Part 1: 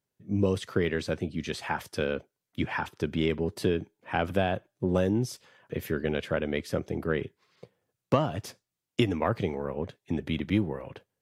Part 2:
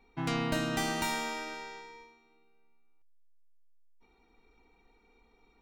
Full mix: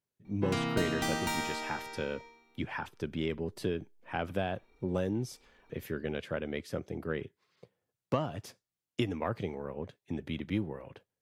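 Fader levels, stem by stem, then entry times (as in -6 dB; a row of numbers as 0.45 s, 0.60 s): -6.5 dB, -1.0 dB; 0.00 s, 0.25 s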